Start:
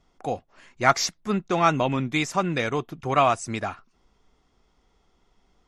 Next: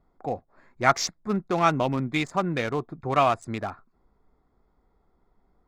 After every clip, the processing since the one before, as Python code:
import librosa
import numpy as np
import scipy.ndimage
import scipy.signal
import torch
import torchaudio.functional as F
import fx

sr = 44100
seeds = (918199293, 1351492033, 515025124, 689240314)

y = fx.wiener(x, sr, points=15)
y = F.gain(torch.from_numpy(y), -1.0).numpy()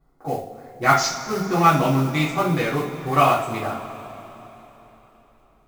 y = fx.mod_noise(x, sr, seeds[0], snr_db=23)
y = fx.rev_double_slope(y, sr, seeds[1], early_s=0.38, late_s=3.8, knee_db=-18, drr_db=-8.0)
y = F.gain(torch.from_numpy(y), -4.0).numpy()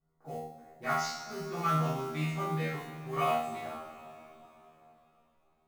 y = fx.comb_fb(x, sr, f0_hz=79.0, decay_s=0.57, harmonics='all', damping=0.0, mix_pct=100)
y = F.gain(torch.from_numpy(y), -2.0).numpy()